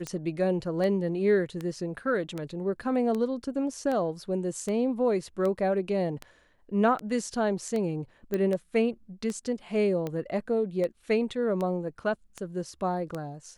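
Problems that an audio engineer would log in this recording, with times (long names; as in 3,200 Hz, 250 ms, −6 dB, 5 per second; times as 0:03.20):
scratch tick 78 rpm −20 dBFS
0:08.34: click −17 dBFS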